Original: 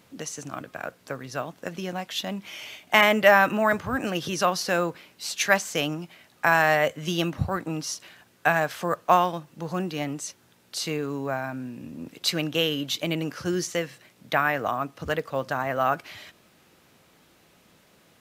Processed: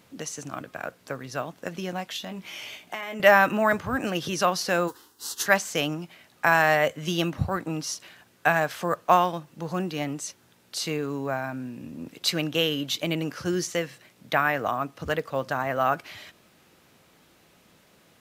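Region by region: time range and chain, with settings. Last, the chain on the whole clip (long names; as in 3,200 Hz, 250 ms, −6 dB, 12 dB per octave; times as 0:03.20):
0:02.16–0:03.20: double-tracking delay 17 ms −8 dB + downward compressor, threshold −31 dBFS
0:04.87–0:05.45: spectral envelope flattened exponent 0.6 + phaser with its sweep stopped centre 620 Hz, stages 6
whole clip: no processing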